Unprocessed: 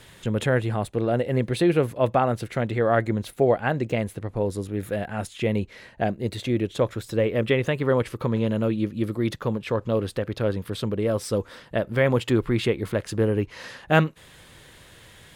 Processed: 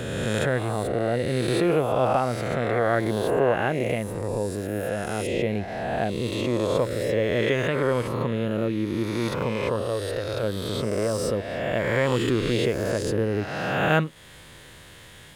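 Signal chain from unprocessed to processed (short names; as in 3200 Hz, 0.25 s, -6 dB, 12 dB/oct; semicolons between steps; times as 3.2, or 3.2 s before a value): spectral swells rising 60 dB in 1.74 s; 9.82–10.43 bell 210 Hz -13.5 dB 0.82 oct; in parallel at -2.5 dB: compressor, threshold -30 dBFS, peak gain reduction 17.5 dB; on the sum: gain -5.5 dB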